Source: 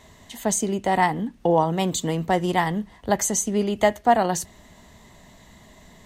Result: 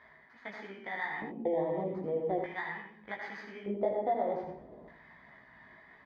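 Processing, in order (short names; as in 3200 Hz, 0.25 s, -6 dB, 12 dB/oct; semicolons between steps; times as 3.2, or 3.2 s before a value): FFT order left unsorted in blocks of 16 samples; Chebyshev low-pass 3400 Hz, order 2; tilt -2.5 dB/oct; reverse; upward compressor, threshold -25 dBFS; reverse; bell 1900 Hz +6.5 dB 0.43 oct; notch 2700 Hz, Q 6.4; on a send at -6.5 dB: reverb RT60 0.45 s, pre-delay 0.102 s; on the sum: compressor, threshold -19 dBFS, peak gain reduction 8 dB; LFO band-pass square 0.41 Hz 530–1700 Hz; echo 79 ms -7 dB; chorus voices 2, 1.4 Hz, delay 17 ms, depth 3.1 ms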